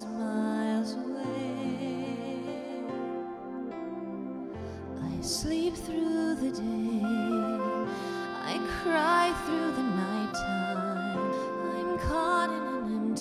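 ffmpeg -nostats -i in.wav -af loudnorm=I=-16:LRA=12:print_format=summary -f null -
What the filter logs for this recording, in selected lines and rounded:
Input Integrated:    -31.2 LUFS
Input True Peak:     -12.6 dBTP
Input LRA:             6.0 LU
Input Threshold:     -41.2 LUFS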